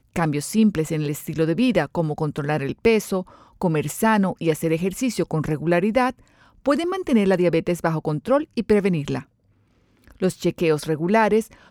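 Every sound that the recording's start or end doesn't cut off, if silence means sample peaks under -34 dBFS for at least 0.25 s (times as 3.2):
3.62–6.11
6.66–9.22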